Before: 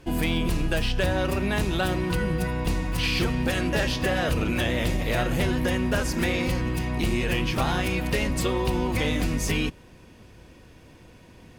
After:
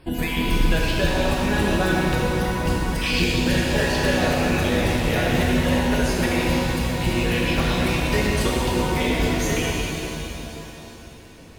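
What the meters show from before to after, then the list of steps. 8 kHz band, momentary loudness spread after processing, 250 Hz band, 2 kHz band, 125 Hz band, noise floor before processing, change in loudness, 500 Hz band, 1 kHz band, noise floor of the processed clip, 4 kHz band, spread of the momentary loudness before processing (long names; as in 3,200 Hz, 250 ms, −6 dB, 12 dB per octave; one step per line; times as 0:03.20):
+5.0 dB, 6 LU, +4.5 dB, +4.5 dB, +3.0 dB, −50 dBFS, +4.0 dB, +4.5 dB, +5.5 dB, −42 dBFS, +4.5 dB, 2 LU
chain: time-frequency cells dropped at random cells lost 32%
reverb with rising layers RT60 3.2 s, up +7 semitones, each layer −8 dB, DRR −4 dB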